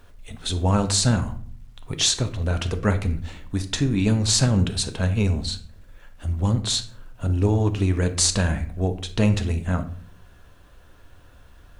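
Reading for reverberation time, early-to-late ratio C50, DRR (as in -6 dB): 0.50 s, 12.5 dB, 8.0 dB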